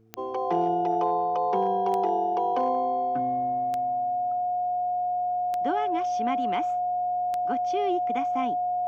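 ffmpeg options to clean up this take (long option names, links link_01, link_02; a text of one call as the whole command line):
ffmpeg -i in.wav -af "adeclick=threshold=4,bandreject=frequency=111.5:width_type=h:width=4,bandreject=frequency=223:width_type=h:width=4,bandreject=frequency=334.5:width_type=h:width=4,bandreject=frequency=446:width_type=h:width=4,bandreject=frequency=720:width=30" out.wav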